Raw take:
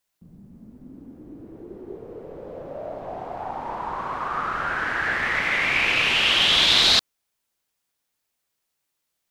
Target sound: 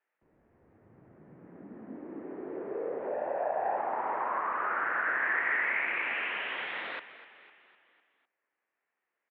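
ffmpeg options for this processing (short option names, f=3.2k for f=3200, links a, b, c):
-filter_complex "[0:a]acompressor=threshold=-30dB:ratio=6,asettb=1/sr,asplit=3[a][b][c];[a]atrim=end=3.114[d];[b]atrim=start=3.11:end=3.77,asetpts=PTS-STARTPTS,afade=t=in:d=0.004:c=qsin,afade=t=out:st=0.656:d=0.004:c=qsin,aecho=1:1:1.1:0.52,atrim=end_sample=29106[e];[c]atrim=start=3.766[f];[d][e]acrossfade=d=0.004:c1=hsin:c2=qsin[g];[g][f]acrossfade=d=0.004:c1=qsin:c2=hsin,asplit=2[h][i];[i]asplit=5[j][k][l][m][n];[j]adelay=252,afreqshift=-50,volume=-15dB[o];[k]adelay=504,afreqshift=-100,volume=-20.4dB[p];[l]adelay=756,afreqshift=-150,volume=-25.7dB[q];[m]adelay=1008,afreqshift=-200,volume=-31.1dB[r];[n]adelay=1260,afreqshift=-250,volume=-36.4dB[s];[o][p][q][r][s]amix=inputs=5:normalize=0[t];[h][t]amix=inputs=2:normalize=0,highpass=f=470:t=q:w=0.5412,highpass=f=470:t=q:w=1.307,lowpass=f=2.5k:t=q:w=0.5176,lowpass=f=2.5k:t=q:w=0.7071,lowpass=f=2.5k:t=q:w=1.932,afreqshift=-150,equalizer=f=1.8k:w=4.3:g=5,volume=1dB"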